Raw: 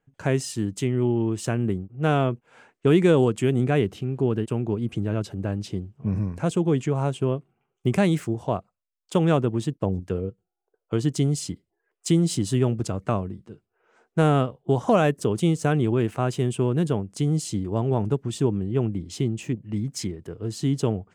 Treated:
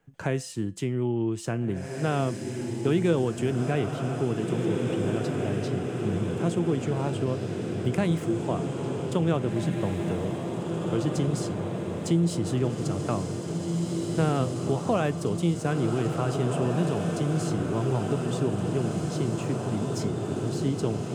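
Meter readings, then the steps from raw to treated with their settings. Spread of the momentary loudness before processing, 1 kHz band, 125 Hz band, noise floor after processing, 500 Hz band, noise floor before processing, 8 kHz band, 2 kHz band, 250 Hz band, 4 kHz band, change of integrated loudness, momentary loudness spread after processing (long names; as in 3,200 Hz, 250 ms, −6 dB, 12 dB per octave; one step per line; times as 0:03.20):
9 LU, −3.0 dB, −2.5 dB, −34 dBFS, −3.0 dB, −82 dBFS, −3.5 dB, −2.5 dB, −2.5 dB, −3.0 dB, −3.0 dB, 5 LU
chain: tuned comb filter 170 Hz, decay 0.35 s, harmonics all, mix 50%
on a send: feedback delay with all-pass diffusion 1,840 ms, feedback 62%, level −4.5 dB
on the sum: multiband upward and downward compressor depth 40%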